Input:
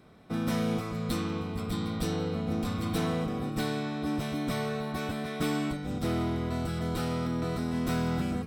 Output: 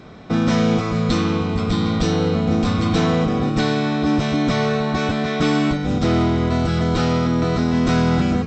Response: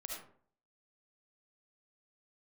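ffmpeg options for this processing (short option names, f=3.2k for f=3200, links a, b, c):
-filter_complex "[0:a]asplit=2[a][b];[b]alimiter=level_in=4.5dB:limit=-24dB:level=0:latency=1:release=421,volume=-4.5dB,volume=1.5dB[c];[a][c]amix=inputs=2:normalize=0,volume=8.5dB" -ar 16000 -c:a pcm_alaw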